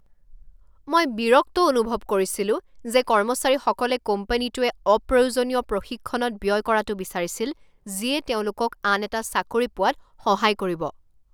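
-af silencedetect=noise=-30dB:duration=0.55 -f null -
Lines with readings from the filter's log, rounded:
silence_start: 0.00
silence_end: 0.89 | silence_duration: 0.89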